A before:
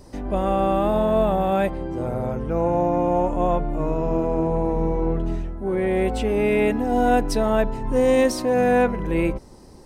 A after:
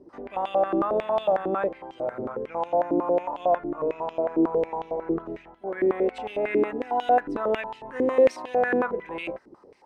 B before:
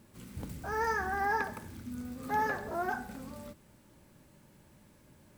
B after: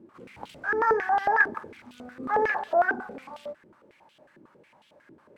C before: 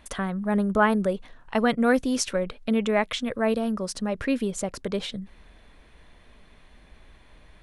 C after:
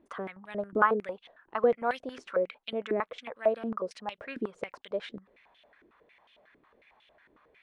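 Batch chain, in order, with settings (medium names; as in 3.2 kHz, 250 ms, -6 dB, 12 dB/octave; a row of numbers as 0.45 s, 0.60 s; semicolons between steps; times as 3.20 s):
step-sequenced band-pass 11 Hz 340–3100 Hz; peak normalisation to -9 dBFS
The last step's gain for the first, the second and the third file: +5.5 dB, +16.5 dB, +4.5 dB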